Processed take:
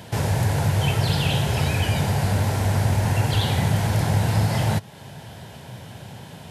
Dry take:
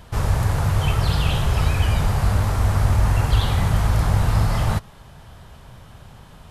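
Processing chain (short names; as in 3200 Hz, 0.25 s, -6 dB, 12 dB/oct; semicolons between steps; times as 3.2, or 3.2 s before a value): HPF 100 Hz 24 dB/oct; bell 1200 Hz -14.5 dB 0.3 oct; in parallel at +2.5 dB: compressor, threshold -34 dBFS, peak gain reduction 15.5 dB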